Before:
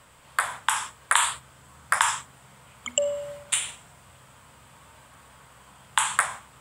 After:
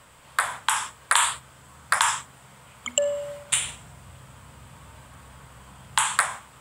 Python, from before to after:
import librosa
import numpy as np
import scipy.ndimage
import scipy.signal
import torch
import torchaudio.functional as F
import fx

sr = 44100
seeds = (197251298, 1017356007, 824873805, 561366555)

y = fx.low_shelf(x, sr, hz=220.0, db=9.5, at=(3.51, 6.02))
y = fx.transformer_sat(y, sr, knee_hz=2900.0)
y = y * 10.0 ** (2.0 / 20.0)